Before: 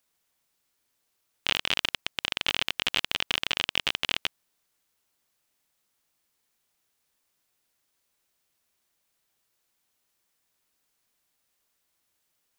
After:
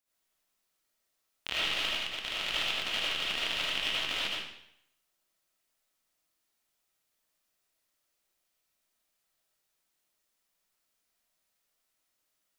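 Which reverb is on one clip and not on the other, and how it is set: algorithmic reverb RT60 0.74 s, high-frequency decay 0.95×, pre-delay 35 ms, DRR -8 dB; trim -11.5 dB

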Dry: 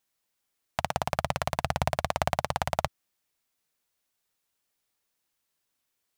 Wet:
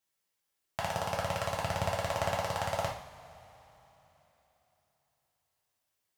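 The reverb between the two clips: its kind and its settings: two-slope reverb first 0.52 s, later 3.8 s, from -21 dB, DRR -3.5 dB; trim -7.5 dB

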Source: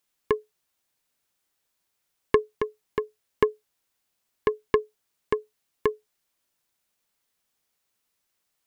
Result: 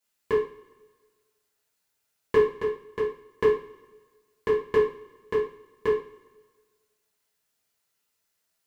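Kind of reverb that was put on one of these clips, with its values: two-slope reverb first 0.4 s, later 1.5 s, from -21 dB, DRR -9 dB; trim -9 dB

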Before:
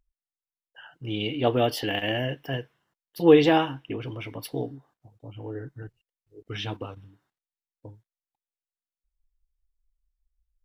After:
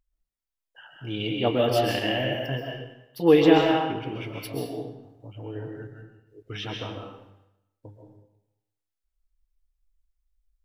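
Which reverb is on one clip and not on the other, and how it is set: algorithmic reverb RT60 0.86 s, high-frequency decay 0.9×, pre-delay 95 ms, DRR 0.5 dB; trim -1.5 dB

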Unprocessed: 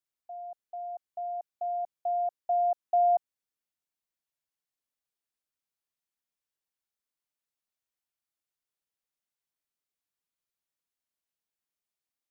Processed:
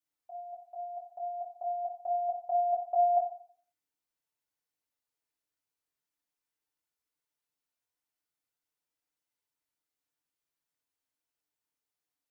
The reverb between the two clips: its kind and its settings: FDN reverb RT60 0.5 s, low-frequency decay 0.8×, high-frequency decay 0.55×, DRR -3 dB; trim -3.5 dB

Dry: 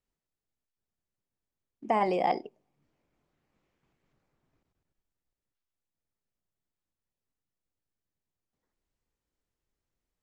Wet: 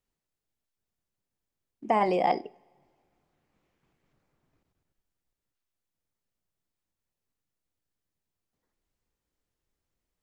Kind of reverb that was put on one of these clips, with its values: two-slope reverb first 0.39 s, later 2.1 s, from -20 dB, DRR 18.5 dB; trim +2 dB

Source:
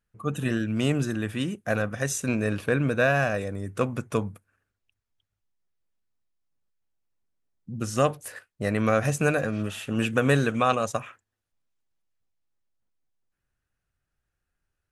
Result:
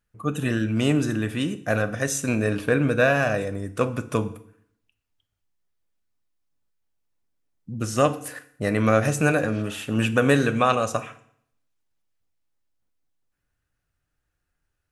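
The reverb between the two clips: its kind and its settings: FDN reverb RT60 0.64 s, low-frequency decay 1.1×, high-frequency decay 0.9×, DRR 10 dB; trim +2.5 dB

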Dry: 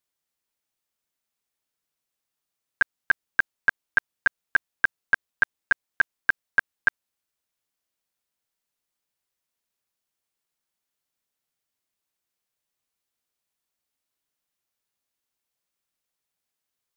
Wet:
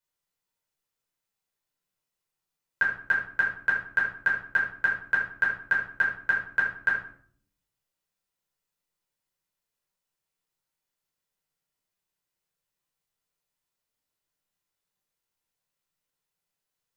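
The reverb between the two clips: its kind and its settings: simulated room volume 730 m³, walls furnished, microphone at 4.9 m; trim -7.5 dB

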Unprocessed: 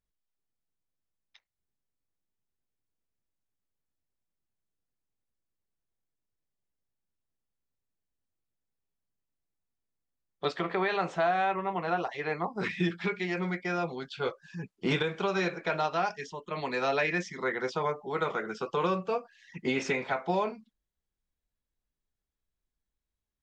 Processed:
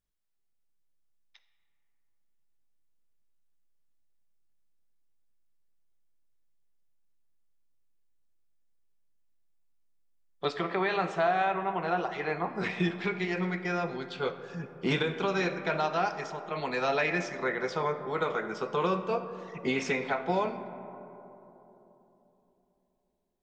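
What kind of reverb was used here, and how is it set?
algorithmic reverb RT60 3.6 s, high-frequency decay 0.3×, pre-delay 10 ms, DRR 10 dB

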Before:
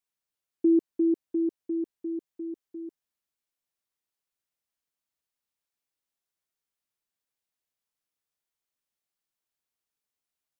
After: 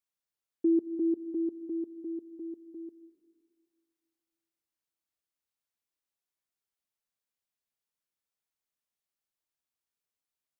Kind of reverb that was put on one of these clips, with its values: plate-style reverb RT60 2.1 s, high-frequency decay 0.3×, pre-delay 115 ms, DRR 15.5 dB; trim -4 dB

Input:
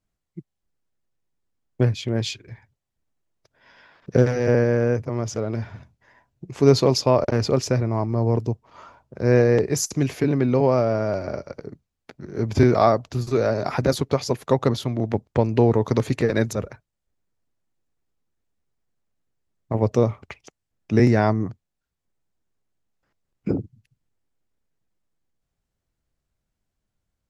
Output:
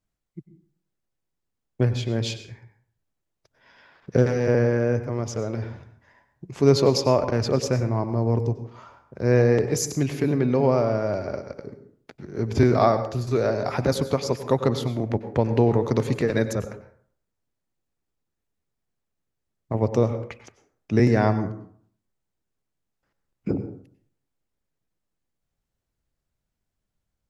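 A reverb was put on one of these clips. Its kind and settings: plate-style reverb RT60 0.56 s, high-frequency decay 0.55×, pre-delay 85 ms, DRR 10.5 dB; trim -2 dB

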